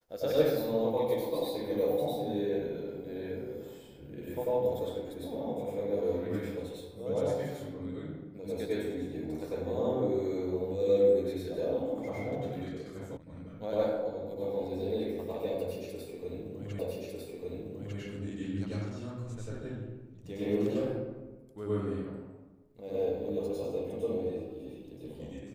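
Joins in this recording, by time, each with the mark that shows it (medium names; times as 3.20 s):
13.17 s: sound stops dead
16.79 s: repeat of the last 1.2 s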